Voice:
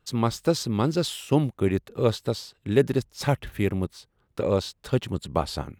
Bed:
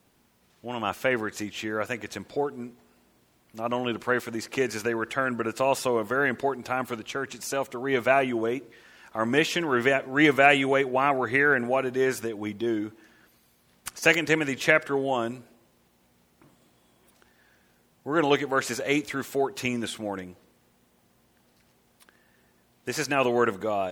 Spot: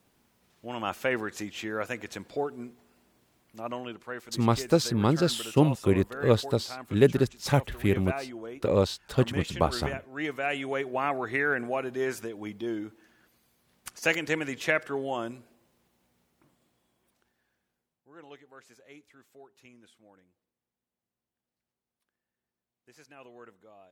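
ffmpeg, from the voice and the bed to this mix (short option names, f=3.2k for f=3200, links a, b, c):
-filter_complex "[0:a]adelay=4250,volume=0dB[a];[1:a]volume=4.5dB,afade=t=out:st=3.39:d=0.59:silence=0.316228,afade=t=in:st=10.42:d=0.56:silence=0.421697,afade=t=out:st=15.69:d=2.36:silence=0.0841395[b];[a][b]amix=inputs=2:normalize=0"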